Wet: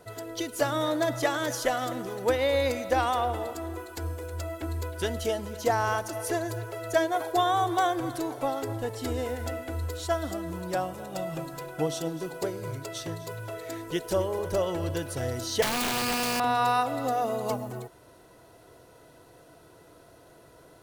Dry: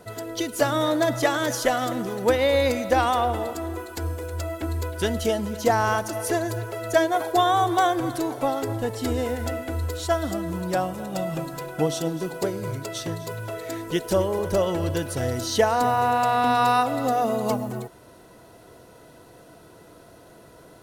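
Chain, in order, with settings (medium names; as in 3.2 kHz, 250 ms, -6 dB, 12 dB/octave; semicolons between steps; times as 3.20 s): peaking EQ 210 Hz -7 dB 0.42 oct; 15.62–16.40 s: integer overflow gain 18 dB; trim -4.5 dB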